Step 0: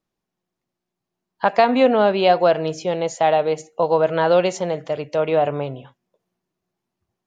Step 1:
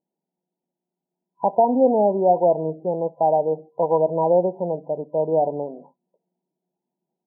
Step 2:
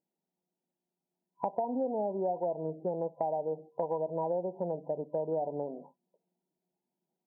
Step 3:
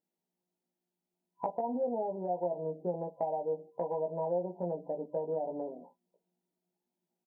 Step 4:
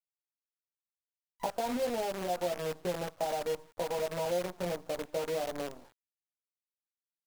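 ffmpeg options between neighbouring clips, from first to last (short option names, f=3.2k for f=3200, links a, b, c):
-af "afftfilt=real='re*between(b*sr/4096,140,1000)':imag='im*between(b*sr/4096,140,1000)':win_size=4096:overlap=0.75,volume=-1.5dB"
-af "acompressor=threshold=-25dB:ratio=6,volume=-4.5dB"
-filter_complex "[0:a]asplit=2[a][b];[b]adelay=17,volume=-3dB[c];[a][c]amix=inputs=2:normalize=0,volume=-3dB"
-af "acrusher=bits=7:dc=4:mix=0:aa=0.000001"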